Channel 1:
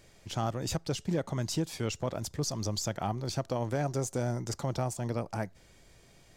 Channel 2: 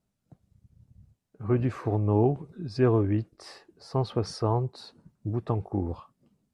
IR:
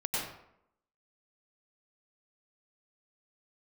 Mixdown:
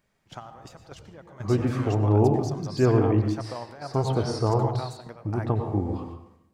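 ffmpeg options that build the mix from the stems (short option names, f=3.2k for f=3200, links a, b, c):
-filter_complex "[0:a]equalizer=f=1.2k:w=0.5:g=13.5,volume=-12dB,asplit=2[a][b];[b]volume=-20dB[c];[1:a]volume=-1.5dB,asplit=3[d][e][f];[e]volume=-6.5dB[g];[f]apad=whole_len=280604[h];[a][h]sidechaingate=range=-13dB:threshold=-56dB:ratio=16:detection=peak[i];[2:a]atrim=start_sample=2205[j];[c][g]amix=inputs=2:normalize=0[k];[k][j]afir=irnorm=-1:irlink=0[l];[i][d][l]amix=inputs=3:normalize=0"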